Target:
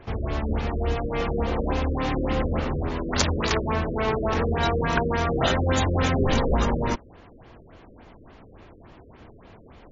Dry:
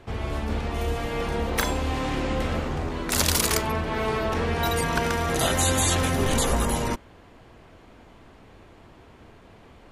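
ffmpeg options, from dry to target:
ffmpeg -i in.wav -af "afftfilt=real='re*lt(b*sr/1024,560*pow(7400/560,0.5+0.5*sin(2*PI*3.5*pts/sr)))':imag='im*lt(b*sr/1024,560*pow(7400/560,0.5+0.5*sin(2*PI*3.5*pts/sr)))':win_size=1024:overlap=0.75,volume=2dB" out.wav

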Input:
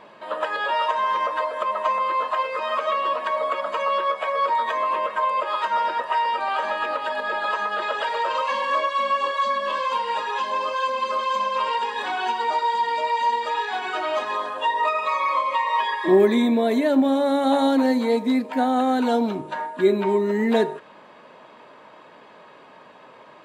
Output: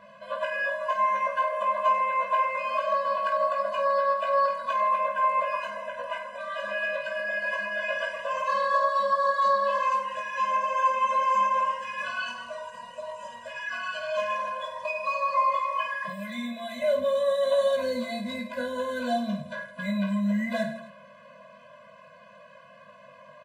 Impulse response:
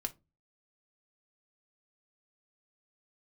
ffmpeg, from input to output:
-filter_complex "[0:a]asettb=1/sr,asplit=3[link_01][link_02][link_03];[link_01]atrim=end=16.034[link_04];[link_02]atrim=start=16.03:end=16.82,asetpts=PTS-STARTPTS,afade=type=in:duration=0.004:curve=qsin,afade=type=out:start_time=0.786:duration=0.004:curve=qsin,acrossover=split=1700|5700[link_05][link_06][link_07];[link_05]acompressor=threshold=-27dB:ratio=4[link_08];[link_06]acompressor=threshold=-35dB:ratio=4[link_09];[link_07]acompressor=threshold=-52dB:ratio=4[link_10];[link_08][link_09][link_10]amix=inputs=3:normalize=0[link_11];[link_03]atrim=start=16.816[link_12];[link_04][link_11]acrossfade=duration=0.004:curve1=hsin:curve2=qsin[link_13];[link_13][link_12]acrossfade=duration=0.004:curve1=qsin:curve2=hsin,aecho=1:1:20|50|95|162.5|263.8:0.631|0.398|0.251|0.158|0.1,afftfilt=real='re*eq(mod(floor(b*sr/1024/240),2),0)':imag='im*eq(mod(floor(b*sr/1024/240),2),0)':win_size=1024:overlap=0.75,volume=-2.5dB"

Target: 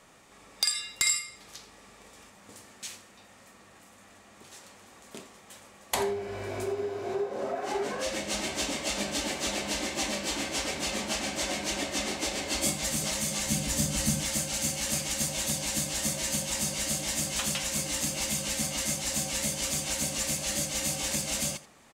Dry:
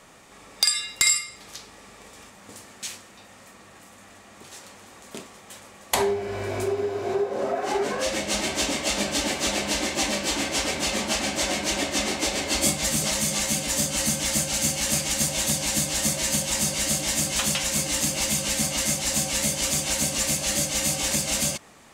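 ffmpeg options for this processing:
ffmpeg -i in.wav -filter_complex "[0:a]asettb=1/sr,asplit=3[link_01][link_02][link_03];[link_01]atrim=end=13.464[link_04];[link_02]atrim=start=13.46:end=14.21,asetpts=PTS-STARTPTS,afade=type=in:duration=0.004:curve=qsin,afade=type=out:start_time=0.746:duration=0.004:curve=qsin,bass=frequency=250:gain=9,treble=frequency=4000:gain=1[link_05];[link_03]atrim=start=14.206[link_06];[link_04][link_05]acrossfade=duration=0.004:curve1=hsin:curve2=qsin[link_07];[link_07][link_06]acrossfade=duration=0.004:curve1=qsin:curve2=hsin,aecho=1:1:84:0.15,volume=-6dB" out.wav

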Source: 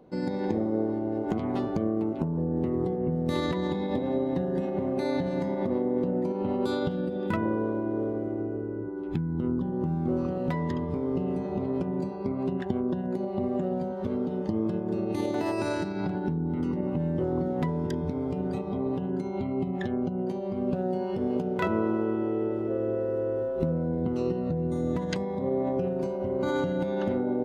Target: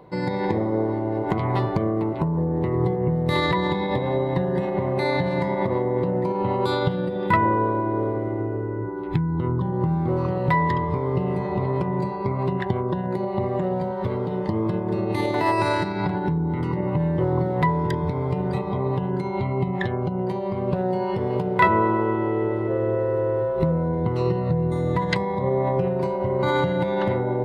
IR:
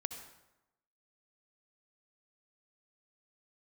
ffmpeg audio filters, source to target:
-af "equalizer=frequency=125:width_type=o:width=0.33:gain=11,equalizer=frequency=250:width_type=o:width=0.33:gain=-12,equalizer=frequency=1000:width_type=o:width=0.33:gain=11,equalizer=frequency=2000:width_type=o:width=0.33:gain=10,equalizer=frequency=4000:width_type=o:width=0.33:gain=5,equalizer=frequency=6300:width_type=o:width=0.33:gain=-8,areverse,acompressor=mode=upward:threshold=-32dB:ratio=2.5,areverse,volume=5.5dB"

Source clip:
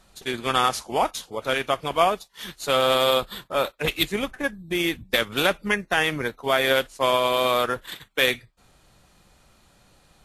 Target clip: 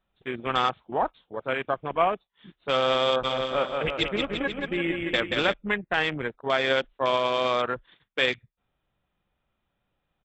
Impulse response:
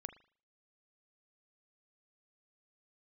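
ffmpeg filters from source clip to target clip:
-filter_complex "[0:a]aresample=8000,aresample=44100,afwtdn=0.0316,asplit=3[link_01][link_02][link_03];[link_01]afade=type=out:start_time=3.23:duration=0.02[link_04];[link_02]aecho=1:1:180|342|487.8|619|737.1:0.631|0.398|0.251|0.158|0.1,afade=type=in:start_time=3.23:duration=0.02,afade=type=out:start_time=5.52:duration=0.02[link_05];[link_03]afade=type=in:start_time=5.52:duration=0.02[link_06];[link_04][link_05][link_06]amix=inputs=3:normalize=0,volume=-3dB"

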